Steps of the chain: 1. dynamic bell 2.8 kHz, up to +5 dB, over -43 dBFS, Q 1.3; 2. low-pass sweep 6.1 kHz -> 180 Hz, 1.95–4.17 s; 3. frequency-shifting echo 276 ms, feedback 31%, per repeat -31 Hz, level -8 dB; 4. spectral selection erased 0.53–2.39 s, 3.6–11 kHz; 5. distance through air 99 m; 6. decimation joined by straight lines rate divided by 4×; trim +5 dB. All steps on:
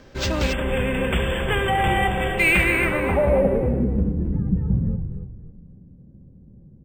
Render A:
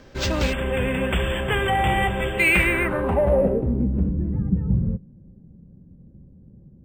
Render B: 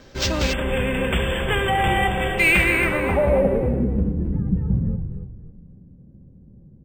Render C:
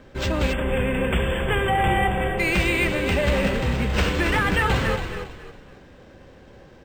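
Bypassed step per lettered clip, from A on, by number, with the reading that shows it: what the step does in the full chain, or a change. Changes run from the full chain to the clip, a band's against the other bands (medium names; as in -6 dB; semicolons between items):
3, momentary loudness spread change -2 LU; 5, 8 kHz band +2.5 dB; 2, loudness change -1.0 LU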